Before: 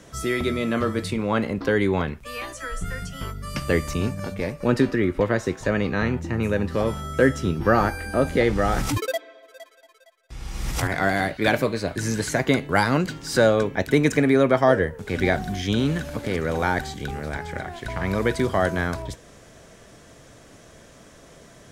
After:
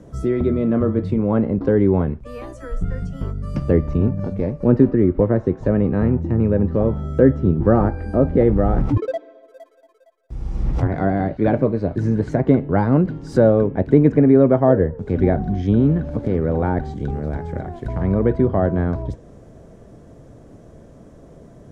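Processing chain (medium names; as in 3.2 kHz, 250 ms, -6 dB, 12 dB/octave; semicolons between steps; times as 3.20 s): tilt shelf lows +9.5 dB, about 1.3 kHz; low-pass that closes with the level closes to 2.6 kHz, closed at -12 dBFS; peaking EQ 2.3 kHz -6.5 dB 2.6 oct; trim -1.5 dB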